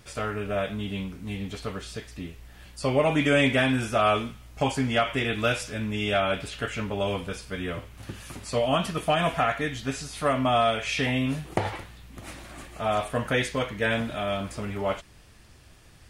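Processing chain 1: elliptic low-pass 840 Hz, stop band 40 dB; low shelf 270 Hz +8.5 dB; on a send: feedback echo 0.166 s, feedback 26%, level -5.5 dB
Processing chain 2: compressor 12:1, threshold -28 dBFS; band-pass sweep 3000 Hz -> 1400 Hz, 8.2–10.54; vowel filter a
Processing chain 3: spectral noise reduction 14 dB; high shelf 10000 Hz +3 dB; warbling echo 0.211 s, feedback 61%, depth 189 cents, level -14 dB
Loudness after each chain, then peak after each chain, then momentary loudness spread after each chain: -25.0, -54.5, -27.0 LUFS; -8.5, -36.0, -9.5 dBFS; 13, 14, 18 LU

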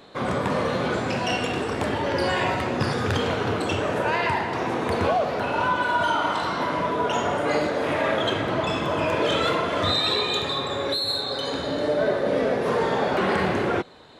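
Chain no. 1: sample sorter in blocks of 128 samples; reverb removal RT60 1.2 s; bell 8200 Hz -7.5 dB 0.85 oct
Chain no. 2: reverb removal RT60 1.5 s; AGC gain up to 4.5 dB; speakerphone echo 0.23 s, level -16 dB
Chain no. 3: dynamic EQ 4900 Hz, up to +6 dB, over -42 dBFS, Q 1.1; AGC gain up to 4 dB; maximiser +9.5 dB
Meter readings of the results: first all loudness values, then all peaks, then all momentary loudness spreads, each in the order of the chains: -28.5, -22.0, -10.5 LUFS; -12.0, -8.0, -1.0 dBFS; 5, 5, 4 LU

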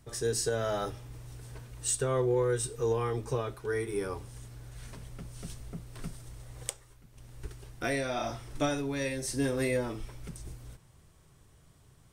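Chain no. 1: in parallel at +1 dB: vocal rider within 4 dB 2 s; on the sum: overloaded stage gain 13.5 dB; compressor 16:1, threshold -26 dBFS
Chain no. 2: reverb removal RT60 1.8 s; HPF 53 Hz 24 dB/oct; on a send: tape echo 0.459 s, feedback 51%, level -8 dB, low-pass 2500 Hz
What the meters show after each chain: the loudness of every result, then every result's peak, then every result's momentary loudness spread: -33.0, -34.0 LUFS; -13.5, -9.5 dBFS; 17, 17 LU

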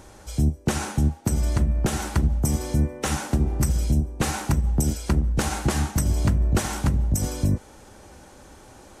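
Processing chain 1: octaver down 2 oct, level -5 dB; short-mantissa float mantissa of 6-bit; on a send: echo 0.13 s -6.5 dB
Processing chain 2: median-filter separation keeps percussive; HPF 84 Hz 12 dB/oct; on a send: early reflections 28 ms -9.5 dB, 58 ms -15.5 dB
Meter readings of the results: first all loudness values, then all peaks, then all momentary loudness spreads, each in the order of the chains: -23.5, -30.0 LUFS; -8.0, -10.0 dBFS; 3, 10 LU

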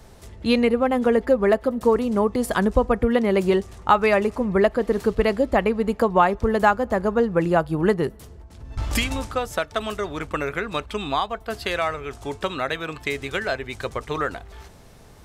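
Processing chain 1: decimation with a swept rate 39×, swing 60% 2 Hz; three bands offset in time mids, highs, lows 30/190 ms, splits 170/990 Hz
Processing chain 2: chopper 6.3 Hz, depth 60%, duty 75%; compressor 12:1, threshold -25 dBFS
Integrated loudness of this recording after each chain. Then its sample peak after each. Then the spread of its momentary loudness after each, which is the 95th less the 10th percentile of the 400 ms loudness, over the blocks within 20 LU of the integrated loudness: -23.5, -31.5 LUFS; -3.5, -11.0 dBFS; 10, 5 LU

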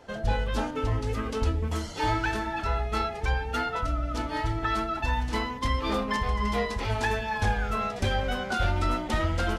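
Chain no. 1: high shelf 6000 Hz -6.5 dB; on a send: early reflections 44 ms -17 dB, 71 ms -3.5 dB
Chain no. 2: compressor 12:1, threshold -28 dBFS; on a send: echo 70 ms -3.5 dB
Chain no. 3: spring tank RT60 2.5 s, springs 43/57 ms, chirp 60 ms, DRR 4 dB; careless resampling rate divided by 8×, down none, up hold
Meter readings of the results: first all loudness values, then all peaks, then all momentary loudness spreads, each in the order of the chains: -27.5, -32.0, -27.0 LUFS; -13.0, -18.0, -13.0 dBFS; 3, 2, 3 LU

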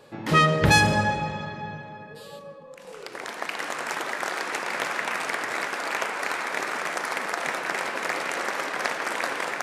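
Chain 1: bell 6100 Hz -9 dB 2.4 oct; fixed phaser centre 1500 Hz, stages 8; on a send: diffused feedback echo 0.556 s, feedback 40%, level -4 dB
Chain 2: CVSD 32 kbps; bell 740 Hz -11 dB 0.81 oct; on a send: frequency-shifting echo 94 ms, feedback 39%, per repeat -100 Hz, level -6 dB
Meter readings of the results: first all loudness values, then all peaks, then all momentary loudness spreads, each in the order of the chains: -29.5, -28.0 LUFS; -9.0, -9.5 dBFS; 14, 20 LU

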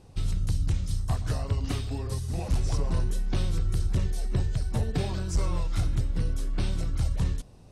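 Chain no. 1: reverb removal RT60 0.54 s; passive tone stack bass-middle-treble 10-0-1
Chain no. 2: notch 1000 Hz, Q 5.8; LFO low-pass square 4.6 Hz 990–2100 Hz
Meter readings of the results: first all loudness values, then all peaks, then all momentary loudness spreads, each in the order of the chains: -40.0, -30.0 LUFS; -23.0, -16.5 dBFS; 4, 3 LU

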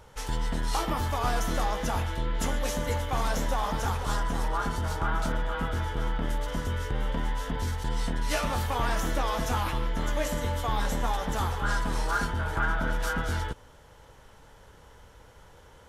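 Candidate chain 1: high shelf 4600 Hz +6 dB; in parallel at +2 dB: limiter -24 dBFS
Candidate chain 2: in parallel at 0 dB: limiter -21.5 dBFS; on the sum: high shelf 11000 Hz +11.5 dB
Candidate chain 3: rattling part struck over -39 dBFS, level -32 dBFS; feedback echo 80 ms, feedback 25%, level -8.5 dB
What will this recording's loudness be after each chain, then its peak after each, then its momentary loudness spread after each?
-25.0, -25.0, -29.5 LUFS; -10.0, -10.0, -13.5 dBFS; 3, 3, 4 LU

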